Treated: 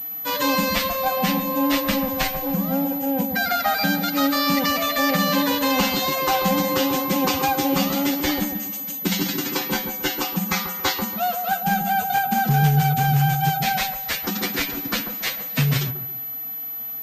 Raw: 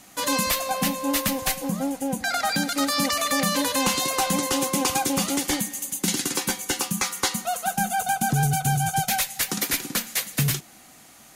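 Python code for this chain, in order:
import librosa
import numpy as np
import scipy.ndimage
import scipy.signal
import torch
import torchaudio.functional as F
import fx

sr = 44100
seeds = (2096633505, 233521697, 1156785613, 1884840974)

y = fx.stretch_vocoder(x, sr, factor=1.5)
y = fx.echo_wet_lowpass(y, sr, ms=139, feedback_pct=32, hz=1000.0, wet_db=-5.0)
y = fx.pwm(y, sr, carrier_hz=12000.0)
y = y * librosa.db_to_amplitude(3.0)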